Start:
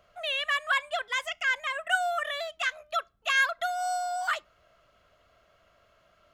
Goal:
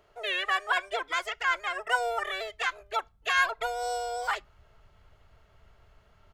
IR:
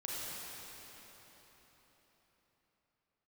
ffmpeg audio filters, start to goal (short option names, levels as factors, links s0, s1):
-filter_complex "[0:a]asplit=2[s0][s1];[s1]asetrate=29433,aresample=44100,atempo=1.49831,volume=0.794[s2];[s0][s2]amix=inputs=2:normalize=0,asubboost=boost=6.5:cutoff=140,volume=0.794"